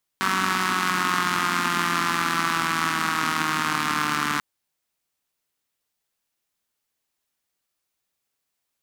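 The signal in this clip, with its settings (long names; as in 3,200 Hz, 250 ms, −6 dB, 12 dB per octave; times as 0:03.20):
pulse-train model of a four-cylinder engine, changing speed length 4.19 s, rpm 5,700, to 4,400, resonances 250/1,200 Hz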